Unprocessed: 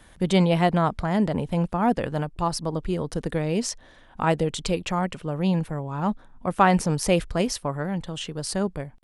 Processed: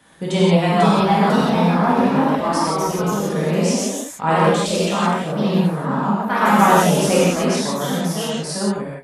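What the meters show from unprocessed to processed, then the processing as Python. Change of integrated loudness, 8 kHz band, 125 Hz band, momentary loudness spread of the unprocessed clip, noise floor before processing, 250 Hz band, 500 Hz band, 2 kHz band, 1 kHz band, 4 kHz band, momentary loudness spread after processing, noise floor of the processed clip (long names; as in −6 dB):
+7.5 dB, +8.5 dB, +5.0 dB, 9 LU, −52 dBFS, +7.5 dB, +7.5 dB, +8.5 dB, +9.0 dB, +7.5 dB, 8 LU, −31 dBFS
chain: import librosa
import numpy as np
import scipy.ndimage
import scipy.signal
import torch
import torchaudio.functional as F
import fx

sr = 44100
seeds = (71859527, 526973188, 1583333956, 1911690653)

y = scipy.signal.sosfilt(scipy.signal.butter(2, 140.0, 'highpass', fs=sr, output='sos'), x)
y = fx.echo_pitch(y, sr, ms=528, semitones=2, count=2, db_per_echo=-3.0)
y = fx.rev_gated(y, sr, seeds[0], gate_ms=200, shape='flat', drr_db=-7.5)
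y = y * librosa.db_to_amplitude(-2.5)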